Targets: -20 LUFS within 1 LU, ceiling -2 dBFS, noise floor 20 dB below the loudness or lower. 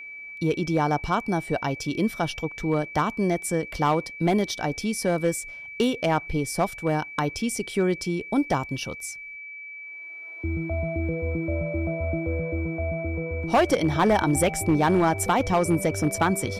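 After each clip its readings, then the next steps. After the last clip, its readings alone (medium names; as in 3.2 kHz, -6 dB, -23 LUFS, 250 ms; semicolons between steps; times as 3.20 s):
clipped samples 0.8%; clipping level -14.0 dBFS; steady tone 2.3 kHz; tone level -37 dBFS; loudness -25.5 LUFS; peak level -14.0 dBFS; loudness target -20.0 LUFS
-> clip repair -14 dBFS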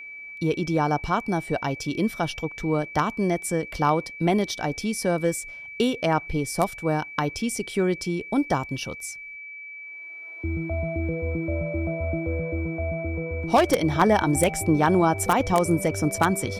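clipped samples 0.0%; steady tone 2.3 kHz; tone level -37 dBFS
-> band-stop 2.3 kHz, Q 30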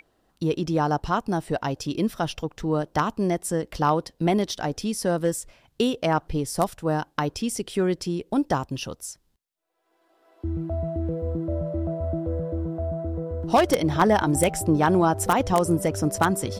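steady tone not found; loudness -25.0 LUFS; peak level -5.0 dBFS; loudness target -20.0 LUFS
-> trim +5 dB; peak limiter -2 dBFS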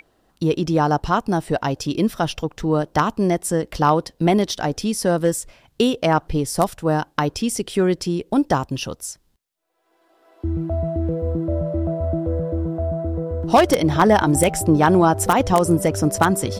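loudness -20.0 LUFS; peak level -2.0 dBFS; noise floor -63 dBFS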